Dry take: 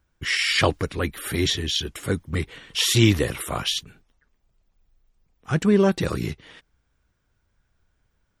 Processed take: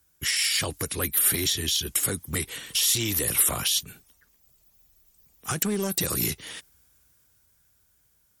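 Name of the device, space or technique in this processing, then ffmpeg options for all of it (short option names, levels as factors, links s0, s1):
FM broadcast chain: -filter_complex "[0:a]highpass=50,dynaudnorm=f=220:g=17:m=3.76,acrossover=split=230|7100[s0][s1][s2];[s0]acompressor=threshold=0.0398:ratio=4[s3];[s1]acompressor=threshold=0.0562:ratio=4[s4];[s2]acompressor=threshold=0.00447:ratio=4[s5];[s3][s4][s5]amix=inputs=3:normalize=0,aemphasis=mode=production:type=50fm,alimiter=limit=0.15:level=0:latency=1:release=87,asoftclip=type=hard:threshold=0.106,lowpass=f=15000:w=0.5412,lowpass=f=15000:w=1.3066,aemphasis=mode=production:type=50fm,volume=0.794"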